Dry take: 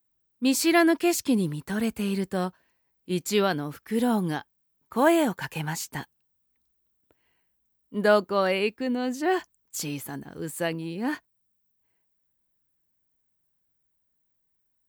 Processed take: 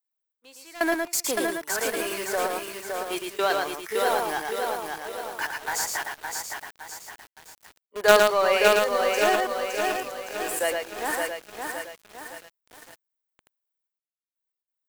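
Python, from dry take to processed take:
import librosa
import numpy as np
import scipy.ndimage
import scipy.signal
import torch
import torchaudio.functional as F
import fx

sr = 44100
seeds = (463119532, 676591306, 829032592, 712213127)

p1 = fx.noise_reduce_blind(x, sr, reduce_db=11)
p2 = scipy.signal.sosfilt(scipy.signal.butter(4, 460.0, 'highpass', fs=sr, output='sos'), p1)
p3 = fx.quant_companded(p2, sr, bits=2)
p4 = p2 + (p3 * 10.0 ** (-7.0 / 20.0))
p5 = fx.step_gate(p4, sr, bpm=93, pattern='xx...x.xxxxxxx', floor_db=-24.0, edge_ms=4.5)
p6 = p5 + fx.echo_single(p5, sr, ms=112, db=-4.0, dry=0)
y = fx.echo_crushed(p6, sr, ms=564, feedback_pct=55, bits=7, wet_db=-3.5)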